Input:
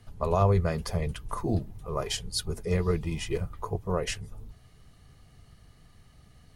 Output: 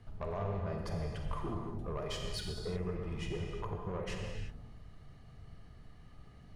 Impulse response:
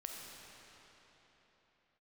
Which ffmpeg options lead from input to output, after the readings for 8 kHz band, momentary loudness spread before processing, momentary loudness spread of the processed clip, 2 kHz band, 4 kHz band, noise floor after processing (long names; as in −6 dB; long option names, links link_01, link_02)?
−14.0 dB, 10 LU, 19 LU, −8.0 dB, −8.5 dB, −55 dBFS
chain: -filter_complex "[0:a]lowpass=frequency=1900:poles=1,acompressor=threshold=-33dB:ratio=6,asoftclip=type=tanh:threshold=-31dB[link_01];[1:a]atrim=start_sample=2205,afade=type=out:start_time=0.42:duration=0.01,atrim=end_sample=18963[link_02];[link_01][link_02]afir=irnorm=-1:irlink=0,volume=4dB"